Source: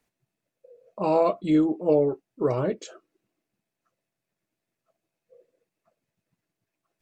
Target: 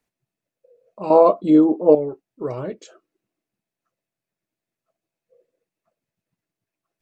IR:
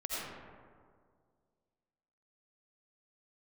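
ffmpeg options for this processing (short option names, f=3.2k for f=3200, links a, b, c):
-filter_complex "[0:a]asettb=1/sr,asplit=3[a][b][c];[a]atrim=end=1.104[d];[b]atrim=start=1.1:end=1.95,asetpts=PTS-STARTPTS,afade=t=in:d=0.004:c=qsin,afade=t=out:st=0.846:d=0.004:c=qsin,equalizer=f=250:t=o:w=1:g=9,equalizer=f=500:t=o:w=1:g=9,equalizer=f=1k:t=o:w=1:g=11,equalizer=f=2k:t=o:w=1:g=-5,equalizer=f=4k:t=o:w=1:g=3[e];[c]atrim=start=1.946[f];[d][e]acrossfade=d=0.004:c1=hsin:c2=qsin[g];[g][f]acrossfade=d=0.004:c1=qsin:c2=hsin,volume=-3dB"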